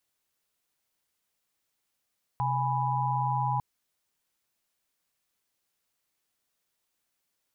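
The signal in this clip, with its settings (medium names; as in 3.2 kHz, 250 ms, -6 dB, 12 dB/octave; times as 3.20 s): chord C3/G#5/B5 sine, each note -29.5 dBFS 1.20 s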